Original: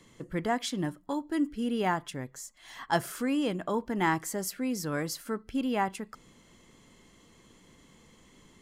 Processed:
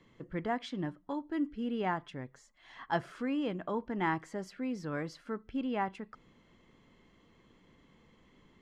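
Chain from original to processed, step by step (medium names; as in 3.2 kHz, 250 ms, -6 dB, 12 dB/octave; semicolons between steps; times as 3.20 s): low-pass 3.1 kHz 12 dB/octave; trim -4.5 dB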